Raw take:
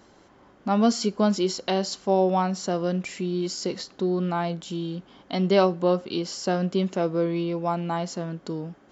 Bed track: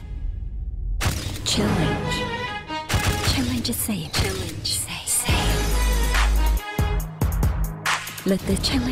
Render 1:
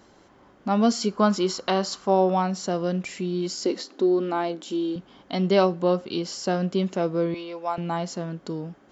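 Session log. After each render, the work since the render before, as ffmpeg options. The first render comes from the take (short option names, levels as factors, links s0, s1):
-filter_complex "[0:a]asettb=1/sr,asplit=3[s0][s1][s2];[s0]atrim=end=1.094[s3];[s1]atrim=start=1.09:end=2.33,asetpts=PTS-STARTPTS,afade=t=in:d=0.004:c=qsin,afade=t=out:st=1.236:d=0.004:c=qsin,equalizer=f=1200:t=o:w=0.74:g=9.5[s4];[s2]atrim=start=2.326[s5];[s3][s4]acrossfade=d=0.004:c1=hsin:c2=qsin[s6];[s6][s5]acrossfade=d=0.004:c1=qsin:c2=hsin,asettb=1/sr,asplit=3[s7][s8][s9];[s7]atrim=end=3.654[s10];[s8]atrim=start=3.65:end=4.96,asetpts=PTS-STARTPTS,afade=t=in:d=0.004:c=qsin,afade=t=out:st=1.306:d=0.004:c=qsin,lowshelf=f=190:t=q:w=3:g=-13.5[s11];[s9]atrim=start=4.956[s12];[s10][s11]acrossfade=d=0.004:c1=hsin:c2=qsin[s13];[s13][s12]acrossfade=d=0.004:c1=qsin:c2=hsin,asettb=1/sr,asplit=3[s14][s15][s16];[s14]atrim=end=7.344[s17];[s15]atrim=start=7.34:end=7.78,asetpts=PTS-STARTPTS,afade=t=in:d=0.004:c=qsin,afade=t=out:st=0.436:d=0.004:c=qsin,highpass=550[s18];[s16]atrim=start=7.776[s19];[s17][s18]acrossfade=d=0.004:c1=hsin:c2=qsin[s20];[s20][s19]acrossfade=d=0.004:c1=qsin:c2=hsin"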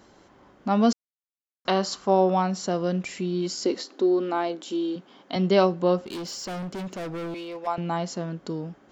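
-filter_complex "[0:a]asettb=1/sr,asplit=3[s0][s1][s2];[s0]atrim=end=3.744[s3];[s1]atrim=start=3.74:end=5.36,asetpts=PTS-STARTPTS,afade=t=in:d=0.004:c=qsin,afade=t=out:st=1.616:d=0.004:c=qsin,highpass=220[s4];[s2]atrim=start=5.356[s5];[s3][s4]acrossfade=d=0.004:c1=hsin:c2=qsin[s6];[s6][s5]acrossfade=d=0.004:c1=qsin:c2=hsin,asettb=1/sr,asplit=3[s7][s8][s9];[s7]atrim=end=5.984[s10];[s8]atrim=start=5.98:end=7.67,asetpts=PTS-STARTPTS,afade=t=in:d=0.004:c=qsin,afade=t=out:st=1.686:d=0.004:c=qsin,asoftclip=type=hard:threshold=0.0282[s11];[s9]atrim=start=7.666[s12];[s10][s11]acrossfade=d=0.004:c1=hsin:c2=qsin[s13];[s13][s12]acrossfade=d=0.004:c1=qsin:c2=hsin,asplit=3[s14][s15][s16];[s14]atrim=end=0.93,asetpts=PTS-STARTPTS,afade=t=out:st=0.926:d=0.004:c=hsin[s17];[s15]atrim=start=0.93:end=1.65,asetpts=PTS-STARTPTS,volume=0[s18];[s16]atrim=start=1.65,asetpts=PTS-STARTPTS,afade=t=in:d=0.004:c=hsin[s19];[s17][s18][s19]concat=n=3:v=0:a=1"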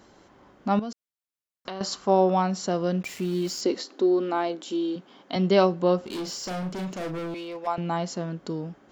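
-filter_complex "[0:a]asettb=1/sr,asplit=3[s0][s1][s2];[s0]atrim=end=0.794[s3];[s1]atrim=start=0.79:end=1.81,asetpts=PTS-STARTPTS,afade=t=in:d=0.004:c=qsin,afade=t=out:st=1.016:d=0.004:c=qsin,acompressor=threshold=0.0251:ratio=6:attack=3.2:release=140:knee=1:detection=peak[s4];[s2]atrim=start=1.806[s5];[s3][s4]acrossfade=d=0.004:c1=hsin:c2=qsin[s6];[s6][s5]acrossfade=d=0.004:c1=qsin:c2=hsin,asettb=1/sr,asplit=3[s7][s8][s9];[s7]atrim=end=3.034[s10];[s8]atrim=start=3.03:end=3.61,asetpts=PTS-STARTPTS,afade=t=in:d=0.004:c=qsin,afade=t=out:st=0.576:d=0.004:c=qsin,aeval=exprs='val(0)*gte(abs(val(0)),0.0106)':c=same[s11];[s9]atrim=start=3.606[s12];[s10][s11]acrossfade=d=0.004:c1=hsin:c2=qsin[s13];[s13][s12]acrossfade=d=0.004:c1=qsin:c2=hsin,asettb=1/sr,asplit=3[s14][s15][s16];[s14]atrim=end=6.004[s17];[s15]atrim=start=6:end=7.19,asetpts=PTS-STARTPTS,afade=t=in:d=0.004:c=qsin,afade=t=out:st=1.186:d=0.004:c=qsin,asplit=2[s18][s19];[s19]adelay=38,volume=0.501[s20];[s18][s20]amix=inputs=2:normalize=0,atrim=end_sample=52479[s21];[s16]atrim=start=7.186[s22];[s17][s21]acrossfade=d=0.004:c1=hsin:c2=qsin[s23];[s23][s22]acrossfade=d=0.004:c1=qsin:c2=hsin"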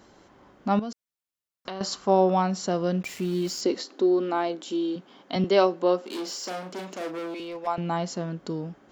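-filter_complex "[0:a]asettb=1/sr,asplit=3[s0][s1][s2];[s0]atrim=end=5.444[s3];[s1]atrim=start=5.44:end=7.4,asetpts=PTS-STARTPTS,afade=t=in:d=0.004:c=qsin,afade=t=out:st=1.956:d=0.004:c=qsin,highpass=f=250:w=0.5412,highpass=f=250:w=1.3066[s4];[s2]atrim=start=7.396[s5];[s3][s4]acrossfade=d=0.004:c1=hsin:c2=qsin[s6];[s6][s5]acrossfade=d=0.004:c1=qsin:c2=hsin"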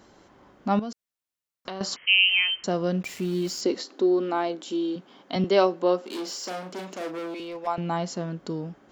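-filter_complex "[0:a]asettb=1/sr,asplit=3[s0][s1][s2];[s0]atrim=end=1.964[s3];[s1]atrim=start=1.96:end=2.64,asetpts=PTS-STARTPTS,afade=t=in:d=0.004:c=qsin,afade=t=out:st=0.676:d=0.004:c=qsin,lowpass=f=2800:t=q:w=0.5098,lowpass=f=2800:t=q:w=0.6013,lowpass=f=2800:t=q:w=0.9,lowpass=f=2800:t=q:w=2.563,afreqshift=-3300[s4];[s2]atrim=start=2.636[s5];[s3][s4]acrossfade=d=0.004:c1=hsin:c2=qsin[s6];[s6][s5]acrossfade=d=0.004:c1=qsin:c2=hsin"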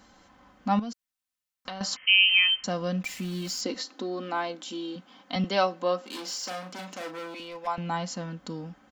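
-af "equalizer=f=400:w=1.1:g=-9.5,aecho=1:1:3.9:0.49"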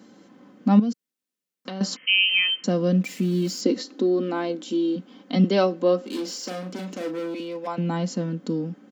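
-af "highpass=f=160:w=0.5412,highpass=f=160:w=1.3066,lowshelf=f=570:t=q:w=1.5:g=10"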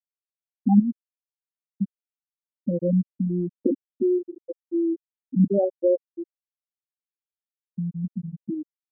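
-af "lowpass=1600,afftfilt=real='re*gte(hypot(re,im),0.501)':imag='im*gte(hypot(re,im),0.501)':win_size=1024:overlap=0.75"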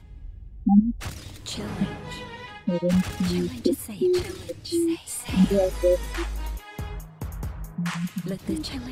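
-filter_complex "[1:a]volume=0.266[s0];[0:a][s0]amix=inputs=2:normalize=0"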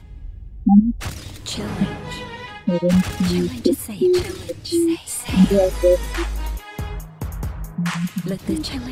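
-af "volume=1.88,alimiter=limit=0.708:level=0:latency=1"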